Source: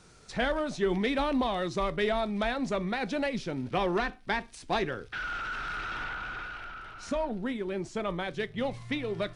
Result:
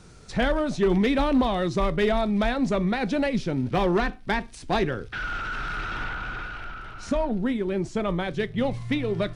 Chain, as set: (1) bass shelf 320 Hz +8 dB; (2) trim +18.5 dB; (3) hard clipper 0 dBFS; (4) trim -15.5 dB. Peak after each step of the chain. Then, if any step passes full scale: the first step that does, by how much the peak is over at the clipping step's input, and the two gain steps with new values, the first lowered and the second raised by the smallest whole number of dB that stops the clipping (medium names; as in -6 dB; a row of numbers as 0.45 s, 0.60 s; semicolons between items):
-14.0 dBFS, +4.5 dBFS, 0.0 dBFS, -15.5 dBFS; step 2, 4.5 dB; step 2 +13.5 dB, step 4 -10.5 dB